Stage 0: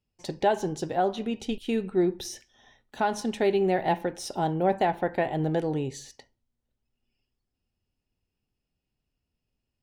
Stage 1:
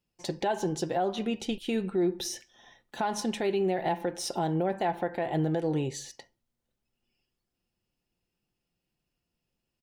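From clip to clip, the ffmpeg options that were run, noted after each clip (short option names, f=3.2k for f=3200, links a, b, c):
-af "lowshelf=f=95:g=-9,aecho=1:1:5.8:0.34,alimiter=limit=-22dB:level=0:latency=1:release=132,volume=2dB"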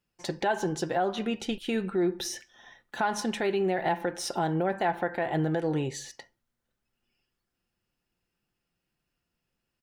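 -af "equalizer=f=1.5k:t=o:w=0.99:g=7.5"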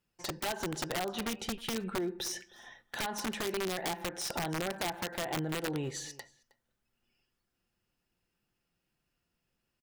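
-filter_complex "[0:a]acompressor=threshold=-32dB:ratio=5,aeval=exprs='(mod(23.7*val(0)+1,2)-1)/23.7':c=same,asplit=2[a][b];[b]adelay=314.9,volume=-21dB,highshelf=f=4k:g=-7.08[c];[a][c]amix=inputs=2:normalize=0"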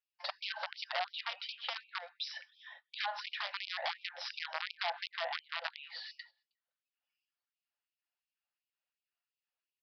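-af "aresample=11025,aresample=44100,agate=range=-11dB:threshold=-55dB:ratio=16:detection=peak,afftfilt=real='re*gte(b*sr/1024,500*pow(2300/500,0.5+0.5*sin(2*PI*2.8*pts/sr)))':imag='im*gte(b*sr/1024,500*pow(2300/500,0.5+0.5*sin(2*PI*2.8*pts/sr)))':win_size=1024:overlap=0.75,volume=1dB"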